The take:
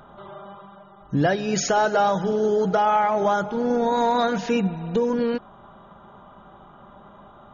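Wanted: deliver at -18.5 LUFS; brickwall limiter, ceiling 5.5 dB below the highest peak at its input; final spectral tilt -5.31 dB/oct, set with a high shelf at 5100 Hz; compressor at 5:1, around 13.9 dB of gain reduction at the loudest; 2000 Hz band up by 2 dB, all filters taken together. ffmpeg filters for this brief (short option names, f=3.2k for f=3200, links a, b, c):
-af "equalizer=f=2k:t=o:g=3.5,highshelf=f=5.1k:g=-3.5,acompressor=threshold=-32dB:ratio=5,volume=18dB,alimiter=limit=-9dB:level=0:latency=1"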